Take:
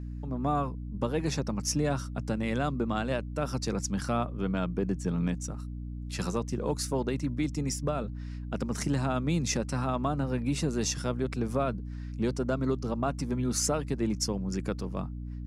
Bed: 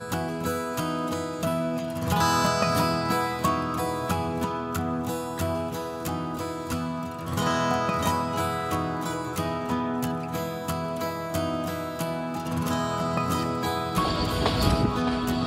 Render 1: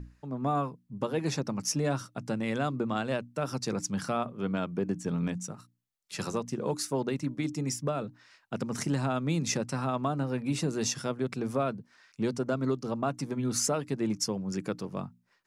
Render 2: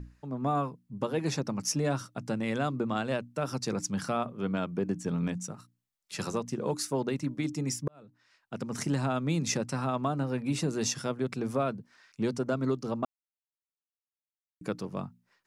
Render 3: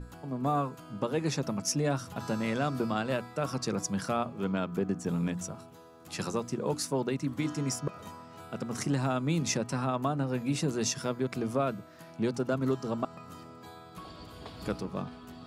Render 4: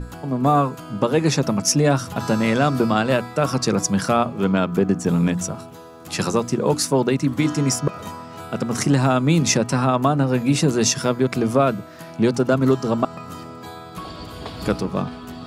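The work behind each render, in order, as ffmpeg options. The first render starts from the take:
ffmpeg -i in.wav -af "bandreject=frequency=60:width_type=h:width=6,bandreject=frequency=120:width_type=h:width=6,bandreject=frequency=180:width_type=h:width=6,bandreject=frequency=240:width_type=h:width=6,bandreject=frequency=300:width_type=h:width=6" out.wav
ffmpeg -i in.wav -filter_complex "[0:a]asplit=4[link_01][link_02][link_03][link_04];[link_01]atrim=end=7.88,asetpts=PTS-STARTPTS,afade=type=out:start_time=7.876:duration=0.004:curve=hsin[link_05];[link_02]atrim=start=7.88:end=13.05,asetpts=PTS-STARTPTS,afade=type=in:duration=1.02,afade=type=out:start_time=5.166:duration=0.004:curve=hsin[link_06];[link_03]atrim=start=13.05:end=14.61,asetpts=PTS-STARTPTS,volume=0[link_07];[link_04]atrim=start=14.61,asetpts=PTS-STARTPTS,afade=type=in:duration=0.004:curve=hsin[link_08];[link_05][link_06][link_07][link_08]concat=n=4:v=0:a=1" out.wav
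ffmpeg -i in.wav -i bed.wav -filter_complex "[1:a]volume=-21dB[link_01];[0:a][link_01]amix=inputs=2:normalize=0" out.wav
ffmpeg -i in.wav -af "volume=12dB" out.wav

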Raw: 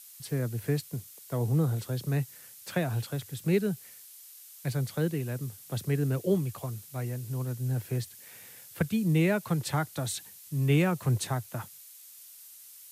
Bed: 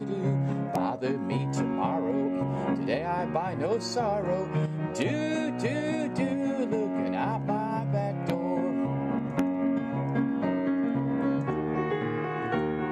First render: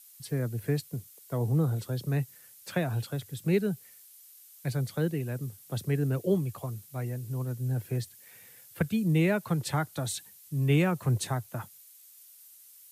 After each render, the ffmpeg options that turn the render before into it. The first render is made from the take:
ffmpeg -i in.wav -af "afftdn=noise_reduction=6:noise_floor=-51" out.wav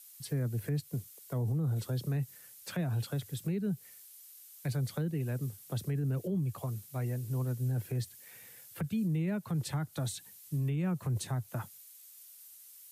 ffmpeg -i in.wav -filter_complex "[0:a]acrossover=split=250[link_01][link_02];[link_02]acompressor=threshold=-38dB:ratio=6[link_03];[link_01][link_03]amix=inputs=2:normalize=0,alimiter=level_in=2dB:limit=-24dB:level=0:latency=1:release=22,volume=-2dB" out.wav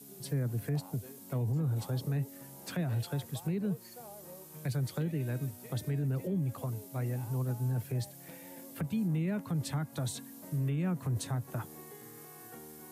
ffmpeg -i in.wav -i bed.wav -filter_complex "[1:a]volume=-22.5dB[link_01];[0:a][link_01]amix=inputs=2:normalize=0" out.wav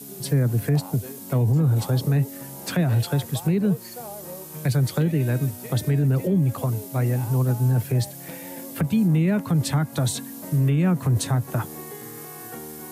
ffmpeg -i in.wav -af "volume=12dB" out.wav

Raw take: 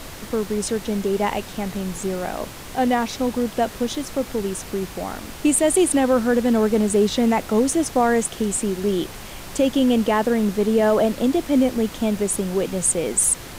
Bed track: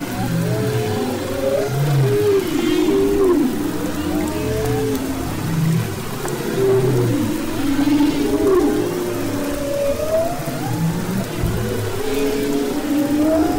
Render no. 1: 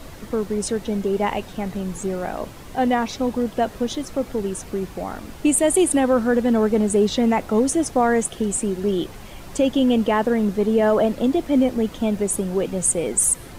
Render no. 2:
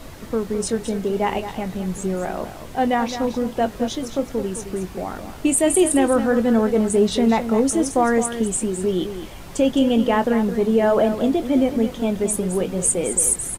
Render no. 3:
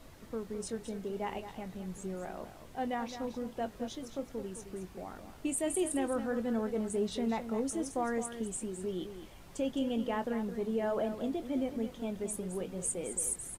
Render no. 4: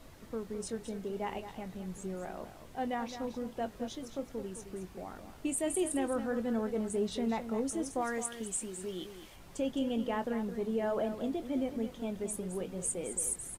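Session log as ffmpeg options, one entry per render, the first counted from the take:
ffmpeg -i in.wav -af "afftdn=noise_reduction=8:noise_floor=-37" out.wav
ffmpeg -i in.wav -filter_complex "[0:a]asplit=2[link_01][link_02];[link_02]adelay=22,volume=-11.5dB[link_03];[link_01][link_03]amix=inputs=2:normalize=0,aecho=1:1:214:0.299" out.wav
ffmpeg -i in.wav -af "volume=-15.5dB" out.wav
ffmpeg -i in.wav -filter_complex "[0:a]asettb=1/sr,asplit=3[link_01][link_02][link_03];[link_01]atrim=end=8.014[link_04];[link_02]atrim=start=8.01:end=9.36,asetpts=PTS-STARTPTS,afade=type=in:duration=0.004:curve=qsin,afade=type=out:start_time=1.346:duration=0.004:curve=qsin,tiltshelf=frequency=920:gain=-4.5[link_05];[link_03]atrim=start=9.356[link_06];[link_04][link_05]acrossfade=duration=0.004:curve1=hsin:curve2=qsin[link_07];[link_07][link_06]acrossfade=duration=0.004:curve1=qsin:curve2=hsin" out.wav

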